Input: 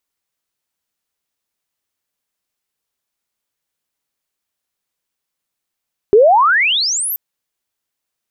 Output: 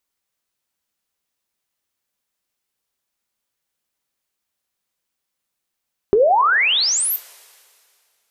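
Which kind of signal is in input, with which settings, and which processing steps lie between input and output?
glide logarithmic 390 Hz → 14,000 Hz −4 dBFS → −18 dBFS 1.03 s
downward compressor 2 to 1, threshold −17 dBFS
coupled-rooms reverb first 0.23 s, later 2.4 s, from −21 dB, DRR 12 dB

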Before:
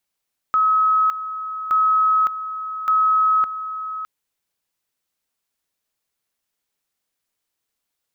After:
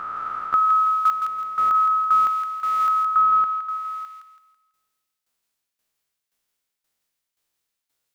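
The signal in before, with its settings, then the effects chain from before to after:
tone at two levels in turn 1,280 Hz −13.5 dBFS, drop 12 dB, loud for 0.56 s, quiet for 0.61 s, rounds 3
peak hold with a rise ahead of every peak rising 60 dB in 2.26 s
shaped tremolo saw down 1.9 Hz, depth 85%
on a send: delay with a high-pass on its return 165 ms, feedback 36%, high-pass 1,400 Hz, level −4.5 dB

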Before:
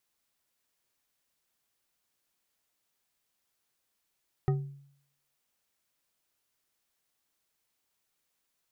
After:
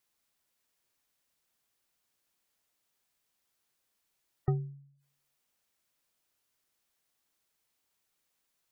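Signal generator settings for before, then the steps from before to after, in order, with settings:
struck glass bar, lowest mode 140 Hz, decay 0.65 s, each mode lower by 6 dB, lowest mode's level −21.5 dB
gate on every frequency bin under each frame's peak −30 dB strong

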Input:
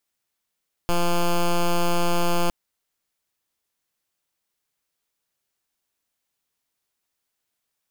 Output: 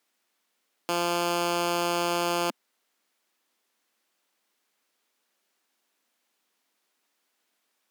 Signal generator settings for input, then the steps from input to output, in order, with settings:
pulse wave 173 Hz, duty 9% −19.5 dBFS 1.61 s
high-shelf EQ 5,400 Hz −8.5 dB
sine wavefolder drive 5 dB, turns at −18 dBFS
Chebyshev high-pass filter 230 Hz, order 3

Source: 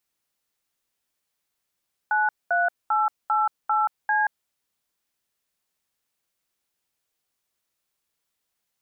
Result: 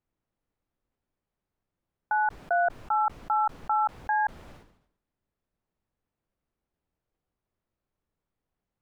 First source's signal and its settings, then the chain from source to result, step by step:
touch tones "93888C", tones 179 ms, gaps 217 ms, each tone −21.5 dBFS
low-pass filter 1,200 Hz 6 dB per octave
spectral tilt −3 dB per octave
level that may fall only so fast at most 82 dB per second

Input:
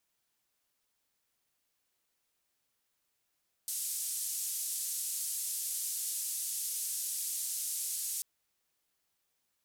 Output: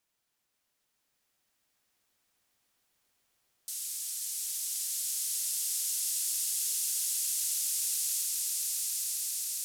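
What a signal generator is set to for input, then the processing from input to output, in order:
band-limited noise 7,500–11,000 Hz, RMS −36.5 dBFS 4.54 s
high-shelf EQ 12,000 Hz −3.5 dB
echo that builds up and dies away 135 ms, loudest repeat 8, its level −7 dB

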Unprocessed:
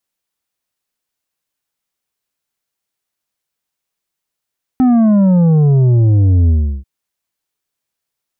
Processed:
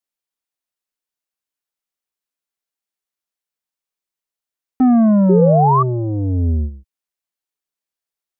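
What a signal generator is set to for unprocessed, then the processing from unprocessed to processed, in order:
bass drop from 260 Hz, over 2.04 s, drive 7 dB, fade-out 0.35 s, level −8 dB
noise gate −16 dBFS, range −9 dB
parametric band 110 Hz −12.5 dB 0.78 octaves
sound drawn into the spectrogram rise, 0:05.29–0:05.83, 370–1,200 Hz −14 dBFS

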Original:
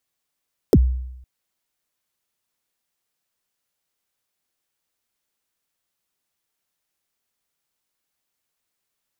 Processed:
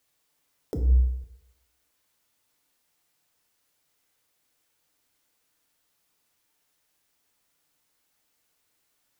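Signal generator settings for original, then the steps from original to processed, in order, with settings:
synth kick length 0.51 s, from 520 Hz, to 63 Hz, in 48 ms, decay 0.86 s, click on, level −7 dB
compressor whose output falls as the input rises −24 dBFS, ratio −1
feedback delay network reverb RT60 1 s, low-frequency decay 0.8×, high-frequency decay 0.55×, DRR 4 dB

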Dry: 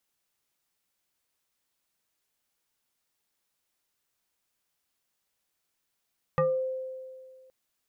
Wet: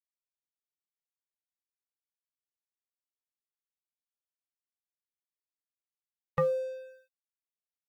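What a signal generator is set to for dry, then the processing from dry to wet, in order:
two-operator FM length 1.12 s, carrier 520 Hz, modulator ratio 1.3, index 1.5, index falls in 0.31 s exponential, decay 1.99 s, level −20 dB
spectral dynamics exaggerated over time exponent 1.5
dead-zone distortion −51 dBFS

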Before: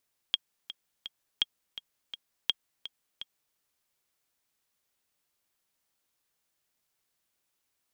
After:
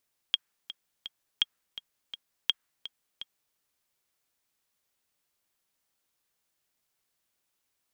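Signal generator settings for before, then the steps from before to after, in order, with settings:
click track 167 BPM, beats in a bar 3, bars 3, 3,260 Hz, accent 14 dB −11.5 dBFS
dynamic equaliser 1,500 Hz, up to +8 dB, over −52 dBFS, Q 1.1

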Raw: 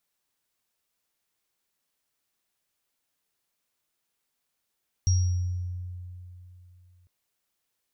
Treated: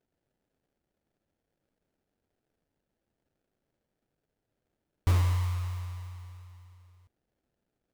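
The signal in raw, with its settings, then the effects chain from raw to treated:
inharmonic partials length 2.00 s, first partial 89.7 Hz, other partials 5,650 Hz, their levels −9.5 dB, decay 3.03 s, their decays 0.80 s, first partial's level −18 dB
high-shelf EQ 4,900 Hz −4.5 dB
sample-rate reduction 1,100 Hz, jitter 20%

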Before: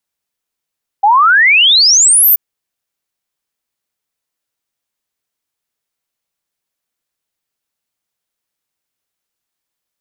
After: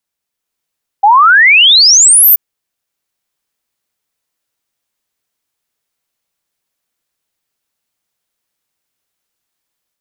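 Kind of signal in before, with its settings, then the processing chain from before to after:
exponential sine sweep 780 Hz → 15,000 Hz 1.33 s −5 dBFS
automatic gain control gain up to 4.5 dB

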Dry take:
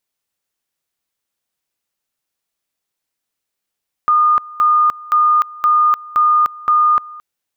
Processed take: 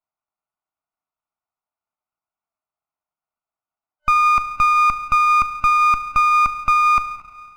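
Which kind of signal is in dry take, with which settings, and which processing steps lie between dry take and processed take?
tone at two levels in turn 1,220 Hz −9 dBFS, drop 21.5 dB, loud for 0.30 s, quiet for 0.22 s, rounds 6
brick-wall band-pass 600–1,500 Hz
four-comb reverb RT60 2.1 s, combs from 26 ms, DRR 10.5 dB
windowed peak hold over 9 samples

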